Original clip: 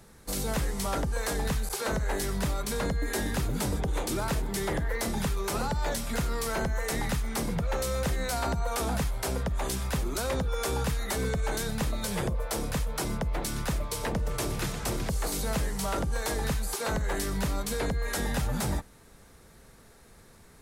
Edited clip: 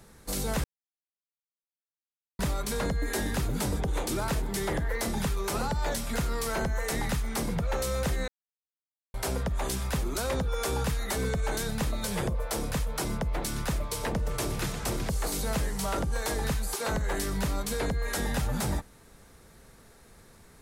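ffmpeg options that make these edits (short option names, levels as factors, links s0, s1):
-filter_complex "[0:a]asplit=5[s0][s1][s2][s3][s4];[s0]atrim=end=0.64,asetpts=PTS-STARTPTS,afade=t=out:st=0.636:d=0.004:c=hsin[s5];[s1]atrim=start=0.64:end=2.39,asetpts=PTS-STARTPTS,volume=0[s6];[s2]atrim=start=2.39:end=8.28,asetpts=PTS-STARTPTS,afade=t=in:d=0.004:c=hsin,afade=t=out:st=5.886:d=0.004:c=hsin[s7];[s3]atrim=start=8.28:end=9.14,asetpts=PTS-STARTPTS,volume=0[s8];[s4]atrim=start=9.14,asetpts=PTS-STARTPTS,afade=t=in:d=0.004:c=hsin[s9];[s5][s6][s7][s8][s9]concat=n=5:v=0:a=1"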